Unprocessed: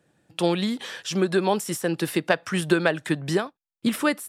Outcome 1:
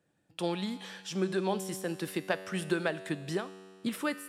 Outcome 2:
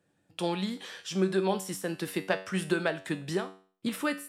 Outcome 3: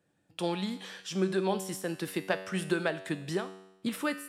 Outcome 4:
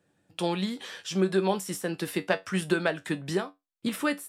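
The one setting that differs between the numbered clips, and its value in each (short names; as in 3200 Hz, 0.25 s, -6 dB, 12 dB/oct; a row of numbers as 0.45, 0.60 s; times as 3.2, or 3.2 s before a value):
resonator, decay: 2, 0.43, 0.88, 0.18 s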